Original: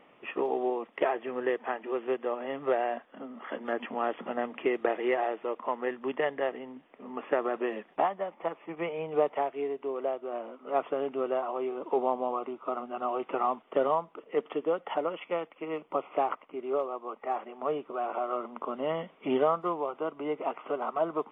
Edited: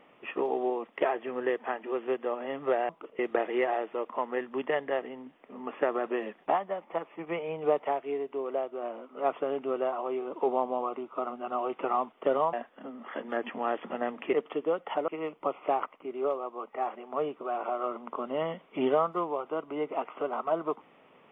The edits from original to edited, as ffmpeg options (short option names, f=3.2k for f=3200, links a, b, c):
-filter_complex "[0:a]asplit=6[a][b][c][d][e][f];[a]atrim=end=2.892[g];[b]atrim=start=14.028:end=14.332[h];[c]atrim=start=4.688:end=14.032[i];[d]atrim=start=2.888:end=4.692[j];[e]atrim=start=14.328:end=15.082[k];[f]atrim=start=15.568[l];[g][h]acrossfade=d=0.004:c1=hsin:c2=hsin[m];[m][i]acrossfade=d=0.004:c1=hsin:c2=hsin[n];[n][j]acrossfade=d=0.004:c1=hsin:c2=hsin[o];[o][k]acrossfade=d=0.004:c1=hsin:c2=hsin[p];[p][l]acrossfade=d=0.004:c1=hsin:c2=hsin"